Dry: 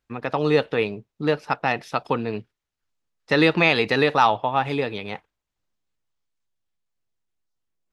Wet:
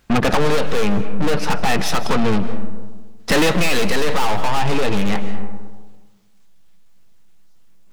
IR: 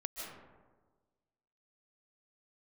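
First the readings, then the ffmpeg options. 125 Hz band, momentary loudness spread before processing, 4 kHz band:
+6.0 dB, 12 LU, +4.5 dB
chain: -filter_complex "[0:a]equalizer=f=190:t=o:w=0.35:g=12,acompressor=threshold=-25dB:ratio=3,aeval=exprs='(tanh(112*val(0)+0.75)-tanh(0.75))/112':c=same,asplit=2[a][b];[1:a]atrim=start_sample=2205[c];[b][c]afir=irnorm=-1:irlink=0,volume=-8.5dB[d];[a][d]amix=inputs=2:normalize=0,alimiter=level_in=32.5dB:limit=-1dB:release=50:level=0:latency=1,volume=-7.5dB"

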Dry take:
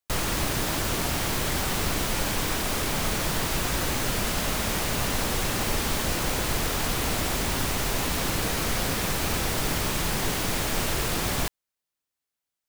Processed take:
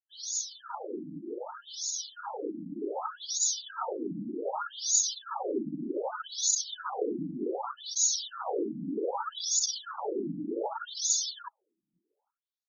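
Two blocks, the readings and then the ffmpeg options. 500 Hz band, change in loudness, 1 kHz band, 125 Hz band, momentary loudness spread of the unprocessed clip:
-3.5 dB, -5.5 dB, -6.5 dB, -20.0 dB, 0 LU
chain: -filter_complex "[0:a]asubboost=boost=3.5:cutoff=56,lowpass=f=7.4k:t=q:w=7.9,asoftclip=type=hard:threshold=-15dB,asplit=2[a][b];[b]adelay=826,lowpass=f=2k:p=1,volume=-22.5dB,asplit=2[c][d];[d]adelay=826,lowpass=f=2k:p=1,volume=0.5,asplit=2[e][f];[f]adelay=826,lowpass=f=2k:p=1,volume=0.5[g];[a][c][e][g]amix=inputs=4:normalize=0,afftdn=nr=31:nf=-28,dynaudnorm=f=680:g=9:m=8dB,asuperstop=centerf=2200:order=12:qfactor=1.4,lowshelf=f=78:g=-8,aecho=1:1:2.3:0.52,afftfilt=real='re*between(b*sr/1024,220*pow(5000/220,0.5+0.5*sin(2*PI*0.65*pts/sr))/1.41,220*pow(5000/220,0.5+0.5*sin(2*PI*0.65*pts/sr))*1.41)':imag='im*between(b*sr/1024,220*pow(5000/220,0.5+0.5*sin(2*PI*0.65*pts/sr))/1.41,220*pow(5000/220,0.5+0.5*sin(2*PI*0.65*pts/sr))*1.41)':win_size=1024:overlap=0.75"

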